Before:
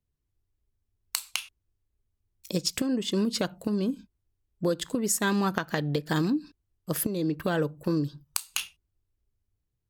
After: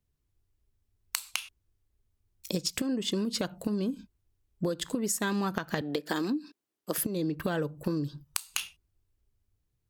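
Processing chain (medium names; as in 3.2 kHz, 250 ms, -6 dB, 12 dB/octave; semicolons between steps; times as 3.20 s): 5.81–6.98 s: high-pass 230 Hz 24 dB/octave; compression, threshold -30 dBFS, peak gain reduction 8.5 dB; trim +3 dB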